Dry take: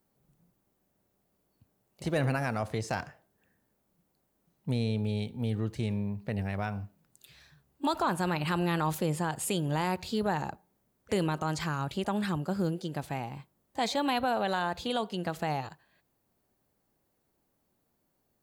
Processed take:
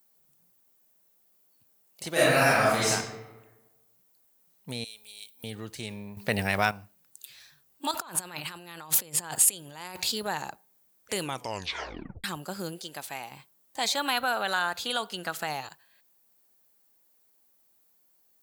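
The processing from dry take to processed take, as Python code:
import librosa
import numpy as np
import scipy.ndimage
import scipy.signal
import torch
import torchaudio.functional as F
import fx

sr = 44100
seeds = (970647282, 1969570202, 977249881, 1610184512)

y = fx.reverb_throw(x, sr, start_s=2.12, length_s=0.77, rt60_s=1.2, drr_db=-10.5)
y = fx.differentiator(y, sr, at=(4.84, 5.44))
y = fx.over_compress(y, sr, threshold_db=-35.0, ratio=-0.5, at=(7.91, 10.12))
y = fx.low_shelf(y, sr, hz=290.0, db=-8.5, at=(12.79, 13.32))
y = fx.peak_eq(y, sr, hz=1400.0, db=8.0, octaves=0.43, at=(13.95, 15.46))
y = fx.edit(y, sr, fx.clip_gain(start_s=6.17, length_s=0.54, db=11.0),
    fx.tape_stop(start_s=11.19, length_s=1.05), tone=tone)
y = fx.tilt_eq(y, sr, slope=3.5)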